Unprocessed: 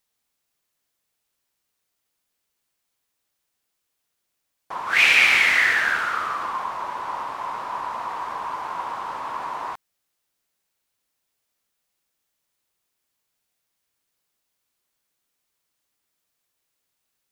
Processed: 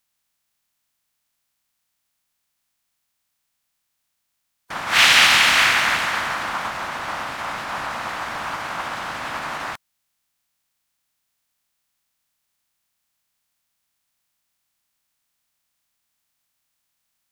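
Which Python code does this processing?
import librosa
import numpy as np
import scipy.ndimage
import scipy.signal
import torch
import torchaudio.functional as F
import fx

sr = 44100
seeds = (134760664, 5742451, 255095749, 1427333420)

y = fx.spec_clip(x, sr, under_db=18)
y = fx.peak_eq(y, sr, hz=420.0, db=-10.5, octaves=0.8)
y = y * librosa.db_to_amplitude(3.0)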